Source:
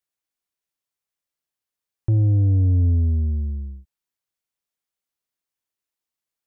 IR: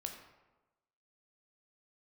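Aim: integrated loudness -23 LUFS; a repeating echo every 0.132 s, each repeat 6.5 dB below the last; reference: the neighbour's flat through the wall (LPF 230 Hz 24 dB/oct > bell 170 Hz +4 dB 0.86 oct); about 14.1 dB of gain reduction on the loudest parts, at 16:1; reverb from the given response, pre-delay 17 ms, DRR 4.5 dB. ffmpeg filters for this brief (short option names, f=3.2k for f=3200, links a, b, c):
-filter_complex "[0:a]acompressor=threshold=-30dB:ratio=16,aecho=1:1:132|264|396|528|660|792:0.473|0.222|0.105|0.0491|0.0231|0.0109,asplit=2[a][b];[1:a]atrim=start_sample=2205,adelay=17[c];[b][c]afir=irnorm=-1:irlink=0,volume=-3dB[d];[a][d]amix=inputs=2:normalize=0,lowpass=f=230:w=0.5412,lowpass=f=230:w=1.3066,equalizer=f=170:t=o:w=0.86:g=4,volume=9.5dB"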